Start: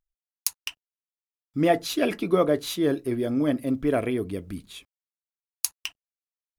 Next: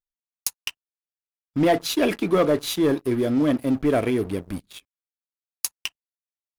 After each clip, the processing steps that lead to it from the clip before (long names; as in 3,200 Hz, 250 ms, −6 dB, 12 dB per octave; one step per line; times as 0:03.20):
leveller curve on the samples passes 3
level −7 dB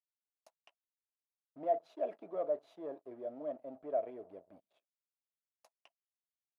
resonant band-pass 640 Hz, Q 7.7
level −6.5 dB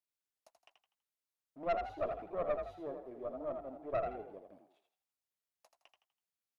tube saturation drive 31 dB, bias 0.7
on a send: echo with shifted repeats 82 ms, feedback 36%, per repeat +43 Hz, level −6 dB
on the sum: level +3.5 dB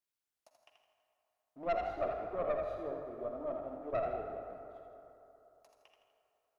convolution reverb RT60 3.3 s, pre-delay 44 ms, DRR 4 dB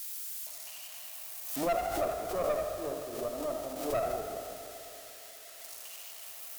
spike at every zero crossing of −37 dBFS
harmonic generator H 8 −31 dB, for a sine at −22.5 dBFS
background raised ahead of every attack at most 61 dB per second
level +3 dB